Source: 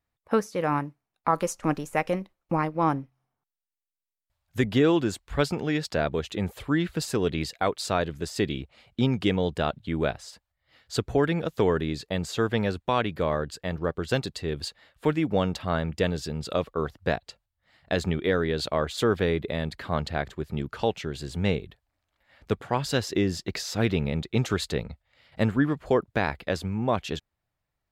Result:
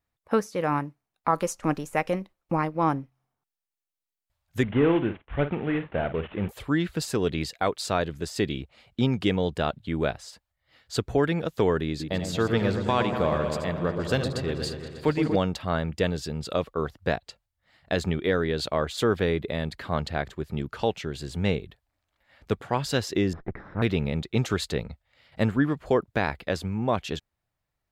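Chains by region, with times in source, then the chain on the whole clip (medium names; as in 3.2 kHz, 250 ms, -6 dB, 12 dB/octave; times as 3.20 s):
4.63–6.49 s: CVSD coder 16 kbps + doubling 49 ms -11 dB
11.88–15.36 s: chunks repeated in reverse 100 ms, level -10.5 dB + delay with an opening low-pass 119 ms, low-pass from 750 Hz, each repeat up 1 oct, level -6 dB
23.33–23.82 s: comb filter that takes the minimum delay 0.55 ms + low-pass 1.6 kHz 24 dB/octave
whole clip: none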